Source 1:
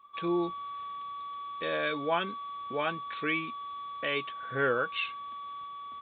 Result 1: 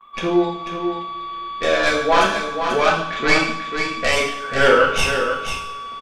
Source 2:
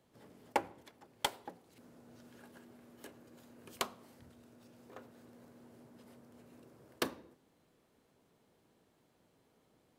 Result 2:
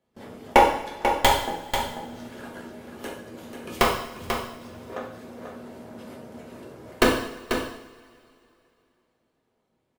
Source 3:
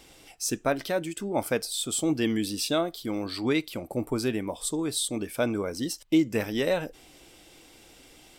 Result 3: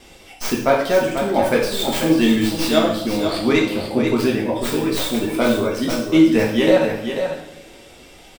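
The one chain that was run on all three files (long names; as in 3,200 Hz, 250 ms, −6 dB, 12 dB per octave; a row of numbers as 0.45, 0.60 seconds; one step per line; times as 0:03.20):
stylus tracing distortion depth 0.16 ms
noise gate with hold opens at −52 dBFS
high-shelf EQ 5,200 Hz −7 dB
reverb reduction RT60 0.64 s
on a send: single-tap delay 490 ms −7.5 dB
on the sum: coupled-rooms reverb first 0.68 s, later 2.9 s, from −21 dB, DRR −3.5 dB
normalise the peak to −2 dBFS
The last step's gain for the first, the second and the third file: +11.0, +14.5, +6.5 decibels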